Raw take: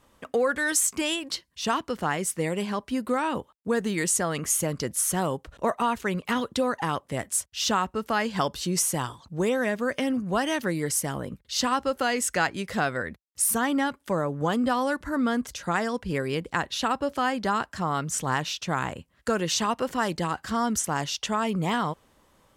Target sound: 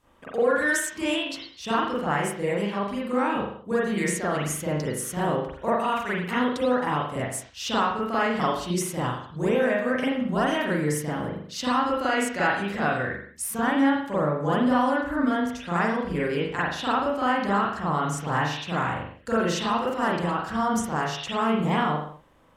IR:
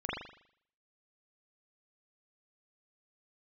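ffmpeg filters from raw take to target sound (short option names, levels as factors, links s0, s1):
-filter_complex "[0:a]asettb=1/sr,asplit=3[s0][s1][s2];[s0]atrim=end=5.794[s3];[s1]atrim=start=5.79:end=6.31,asetpts=PTS-STARTPTS,afade=t=in:d=0.004:c=qsin,afade=t=out:st=0.516:d=0.004:c=qsin,tiltshelf=f=1400:g=-3.5[s4];[s2]atrim=start=6.306[s5];[s3][s4]acrossfade=d=0.004:c1=hsin:c2=qsin[s6];[s6][s5]acrossfade=d=0.004:c1=qsin:c2=hsin[s7];[1:a]atrim=start_sample=2205,afade=t=out:st=0.35:d=0.01,atrim=end_sample=15876[s8];[s7][s8]afir=irnorm=-1:irlink=0,volume=0.631"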